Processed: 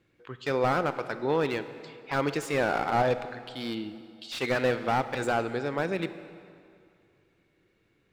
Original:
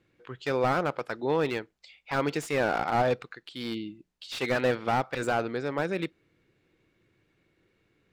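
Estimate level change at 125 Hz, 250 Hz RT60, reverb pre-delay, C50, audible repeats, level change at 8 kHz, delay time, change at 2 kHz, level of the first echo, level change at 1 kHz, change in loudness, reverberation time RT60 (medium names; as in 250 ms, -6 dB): +0.5 dB, 2.3 s, 27 ms, 12.0 dB, no echo, 0.0 dB, no echo, +0.5 dB, no echo, +0.5 dB, 0.0 dB, 2.4 s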